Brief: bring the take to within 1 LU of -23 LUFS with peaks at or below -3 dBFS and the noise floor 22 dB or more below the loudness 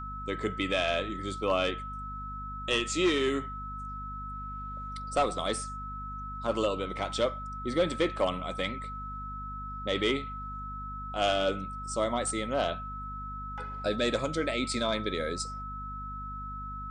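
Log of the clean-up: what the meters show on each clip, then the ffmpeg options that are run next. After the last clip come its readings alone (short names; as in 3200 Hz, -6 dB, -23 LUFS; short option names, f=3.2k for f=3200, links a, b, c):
hum 50 Hz; harmonics up to 250 Hz; hum level -40 dBFS; steady tone 1300 Hz; tone level -38 dBFS; loudness -32.0 LUFS; peak -17.0 dBFS; loudness target -23.0 LUFS
-> -af "bandreject=f=50:t=h:w=6,bandreject=f=100:t=h:w=6,bandreject=f=150:t=h:w=6,bandreject=f=200:t=h:w=6,bandreject=f=250:t=h:w=6"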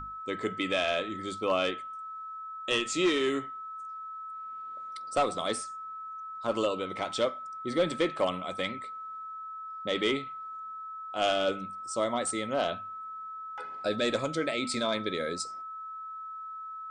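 hum none; steady tone 1300 Hz; tone level -38 dBFS
-> -af "bandreject=f=1.3k:w=30"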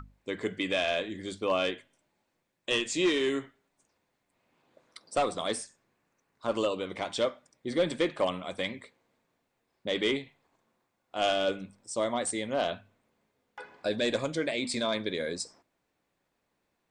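steady tone none; loudness -31.0 LUFS; peak -17.5 dBFS; loudness target -23.0 LUFS
-> -af "volume=8dB"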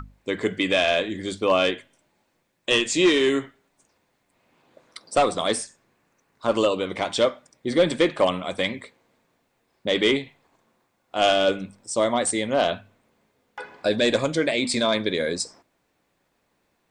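loudness -23.0 LUFS; peak -9.5 dBFS; noise floor -71 dBFS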